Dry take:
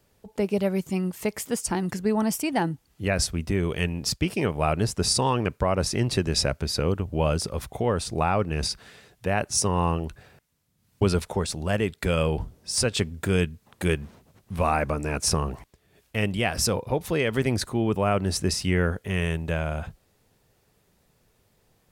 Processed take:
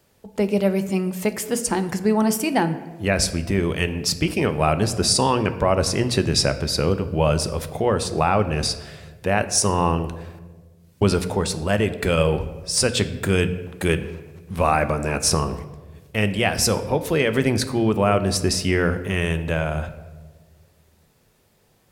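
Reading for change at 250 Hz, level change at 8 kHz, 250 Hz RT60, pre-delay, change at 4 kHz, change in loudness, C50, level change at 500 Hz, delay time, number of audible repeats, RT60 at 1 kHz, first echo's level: +4.5 dB, +4.5 dB, 1.8 s, 3 ms, +5.0 dB, +4.5 dB, 13.0 dB, +5.0 dB, no echo, no echo, 1.2 s, no echo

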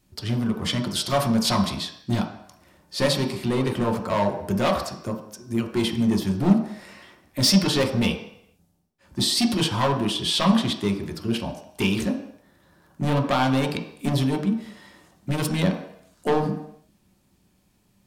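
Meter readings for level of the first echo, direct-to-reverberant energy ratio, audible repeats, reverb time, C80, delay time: no echo, 1.0 dB, no echo, 0.70 s, 10.0 dB, no echo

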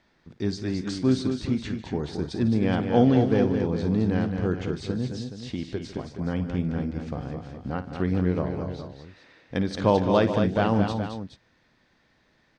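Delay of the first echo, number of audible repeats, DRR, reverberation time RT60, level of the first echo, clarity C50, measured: 54 ms, 4, no reverb, no reverb, -13.5 dB, no reverb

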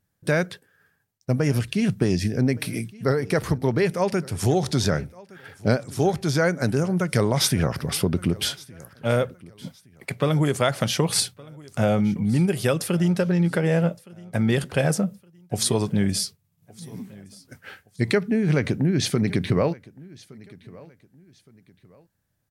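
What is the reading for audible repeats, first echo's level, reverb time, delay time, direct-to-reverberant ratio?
2, -22.5 dB, no reverb, 1166 ms, no reverb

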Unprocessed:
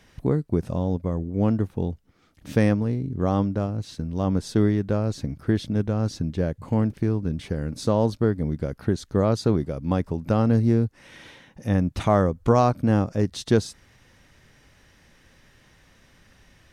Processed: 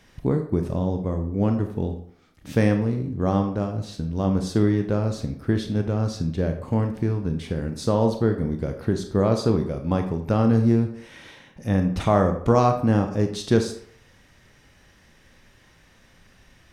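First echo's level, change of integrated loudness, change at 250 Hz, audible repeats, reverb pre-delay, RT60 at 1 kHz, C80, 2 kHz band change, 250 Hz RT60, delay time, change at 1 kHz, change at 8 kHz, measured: no echo, +1.0 dB, +1.0 dB, no echo, 24 ms, 0.65 s, 12.0 dB, +1.0 dB, 0.55 s, no echo, +1.5 dB, +0.5 dB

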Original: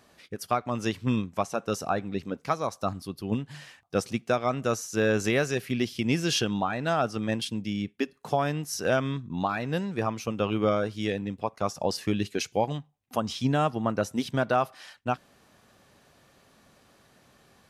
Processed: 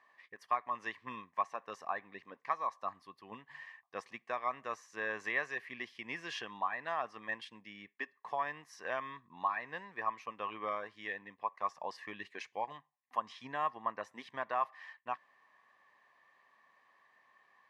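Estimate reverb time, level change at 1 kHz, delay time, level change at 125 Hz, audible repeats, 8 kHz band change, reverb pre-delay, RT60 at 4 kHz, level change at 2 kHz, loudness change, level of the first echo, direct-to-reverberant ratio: no reverb, -5.5 dB, no echo, -30.0 dB, no echo, -23.0 dB, no reverb, no reverb, -5.5 dB, -10.5 dB, no echo, no reverb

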